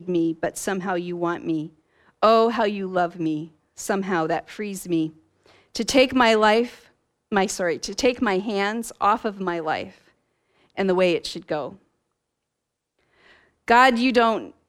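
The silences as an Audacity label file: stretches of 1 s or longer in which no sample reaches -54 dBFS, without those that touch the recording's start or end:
11.820000	12.990000	silence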